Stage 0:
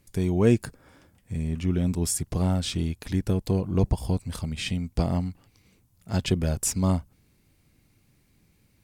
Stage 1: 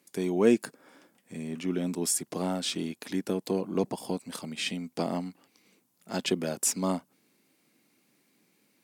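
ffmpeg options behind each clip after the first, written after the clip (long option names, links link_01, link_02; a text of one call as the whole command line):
ffmpeg -i in.wav -af "highpass=frequency=220:width=0.5412,highpass=frequency=220:width=1.3066" out.wav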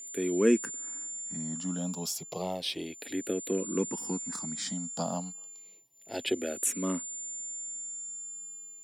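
ffmpeg -i in.wav -filter_complex "[0:a]aeval=exprs='val(0)+0.0158*sin(2*PI*7200*n/s)':channel_layout=same,asplit=2[link_01][link_02];[link_02]afreqshift=-0.31[link_03];[link_01][link_03]amix=inputs=2:normalize=1" out.wav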